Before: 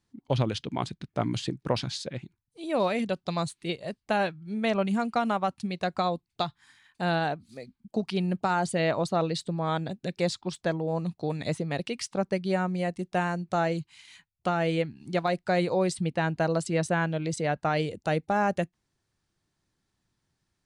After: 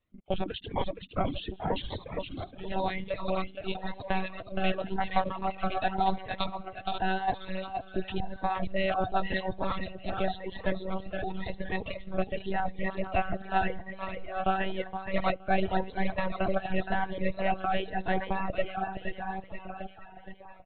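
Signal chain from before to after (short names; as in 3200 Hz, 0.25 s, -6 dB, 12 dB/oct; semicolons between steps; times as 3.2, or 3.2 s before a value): regenerating reverse delay 0.608 s, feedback 49%, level -6.5 dB; low shelf 390 Hz -4 dB; small resonant body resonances 720/1900/2700 Hz, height 7 dB, ringing for 30 ms; monotone LPC vocoder at 8 kHz 190 Hz; wow and flutter 15 cents; feedback echo 0.469 s, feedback 37%, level -5.5 dB; reverb removal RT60 1.5 s; cascading phaser rising 0.92 Hz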